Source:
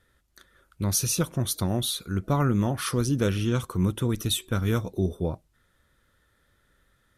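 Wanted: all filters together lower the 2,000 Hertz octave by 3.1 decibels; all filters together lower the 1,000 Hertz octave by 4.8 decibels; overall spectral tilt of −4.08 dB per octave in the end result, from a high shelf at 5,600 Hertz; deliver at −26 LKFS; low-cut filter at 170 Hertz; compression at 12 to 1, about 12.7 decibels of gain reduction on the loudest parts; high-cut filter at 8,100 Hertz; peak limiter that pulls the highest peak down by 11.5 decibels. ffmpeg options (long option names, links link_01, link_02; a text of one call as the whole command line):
ffmpeg -i in.wav -af "highpass=170,lowpass=8100,equalizer=frequency=1000:width_type=o:gain=-6,equalizer=frequency=2000:width_type=o:gain=-3,highshelf=frequency=5600:gain=8.5,acompressor=threshold=-33dB:ratio=12,volume=17.5dB,alimiter=limit=-16dB:level=0:latency=1" out.wav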